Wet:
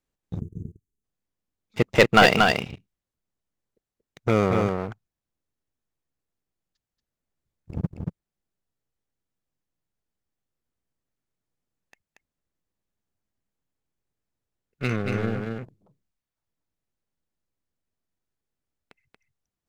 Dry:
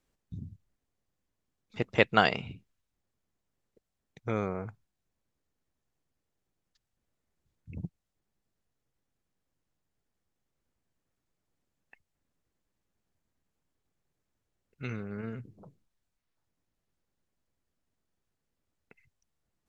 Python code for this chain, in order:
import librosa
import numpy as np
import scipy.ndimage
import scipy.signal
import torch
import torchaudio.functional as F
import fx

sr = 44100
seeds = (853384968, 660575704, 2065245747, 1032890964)

y = fx.leveller(x, sr, passes=3)
y = y + 10.0 ** (-4.0 / 20.0) * np.pad(y, (int(232 * sr / 1000.0), 0))[:len(y)]
y = fx.spec_box(y, sr, start_s=0.4, length_s=0.64, low_hz=460.0, high_hz=6000.0, gain_db=-26)